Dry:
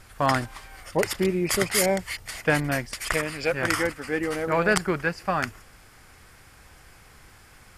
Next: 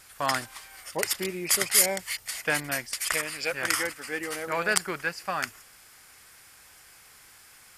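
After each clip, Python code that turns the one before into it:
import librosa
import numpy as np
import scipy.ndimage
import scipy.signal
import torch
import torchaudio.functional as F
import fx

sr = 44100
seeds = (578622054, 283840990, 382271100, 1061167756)

y = fx.tilt_eq(x, sr, slope=3.0)
y = y * librosa.db_to_amplitude(-4.5)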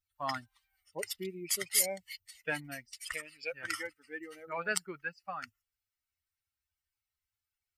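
y = fx.bin_expand(x, sr, power=2.0)
y = y * librosa.db_to_amplitude(-5.0)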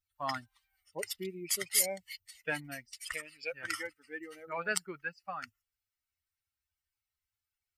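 y = x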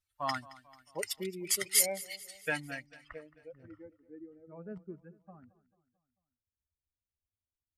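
y = fx.filter_sweep_lowpass(x, sr, from_hz=12000.0, to_hz=280.0, start_s=2.47, end_s=3.37, q=0.98)
y = fx.echo_feedback(y, sr, ms=221, feedback_pct=52, wet_db=-19.5)
y = y * librosa.db_to_amplitude(1.5)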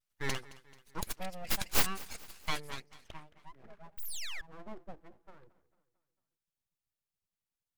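y = fx.spec_paint(x, sr, seeds[0], shape='fall', start_s=3.97, length_s=0.44, low_hz=790.0, high_hz=11000.0, level_db=-37.0)
y = np.abs(y)
y = fx.vibrato(y, sr, rate_hz=0.47, depth_cents=25.0)
y = y * librosa.db_to_amplitude(1.0)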